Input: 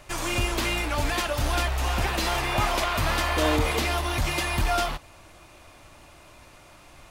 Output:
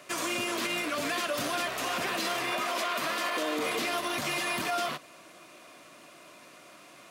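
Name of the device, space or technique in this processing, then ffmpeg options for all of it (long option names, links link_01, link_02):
PA system with an anti-feedback notch: -filter_complex "[0:a]highpass=frequency=180:width=0.5412,highpass=frequency=180:width=1.3066,asuperstop=centerf=850:order=4:qfactor=5.7,alimiter=limit=-22dB:level=0:latency=1:release=38,asettb=1/sr,asplit=3[link_01][link_02][link_03];[link_01]atrim=end=2.524[link_04];[link_02]atrim=start=2.52:end=3.63,asetpts=PTS-STARTPTS,afade=type=in:duration=0.004:curve=qsin,afade=type=out:start_time=1.106:duration=0.004:curve=qsin,highpass=210[link_05];[link_03]atrim=start=3.626[link_06];[link_04][link_05]acrossfade=duration=0.004:curve1=hsin:curve2=qsin[link_07];[link_07][link_06]acrossfade=duration=0.004:curve1=qsin:curve2=hsin"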